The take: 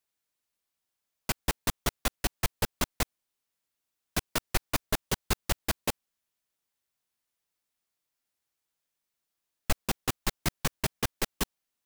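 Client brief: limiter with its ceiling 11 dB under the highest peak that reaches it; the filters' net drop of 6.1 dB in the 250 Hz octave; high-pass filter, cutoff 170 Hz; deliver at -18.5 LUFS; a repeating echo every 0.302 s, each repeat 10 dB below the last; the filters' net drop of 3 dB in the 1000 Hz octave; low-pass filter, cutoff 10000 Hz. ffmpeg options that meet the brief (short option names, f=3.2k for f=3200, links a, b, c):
-af "highpass=170,lowpass=10k,equalizer=f=250:t=o:g=-6.5,equalizer=f=1k:t=o:g=-3.5,alimiter=level_in=3dB:limit=-24dB:level=0:latency=1,volume=-3dB,aecho=1:1:302|604|906|1208:0.316|0.101|0.0324|0.0104,volume=24.5dB"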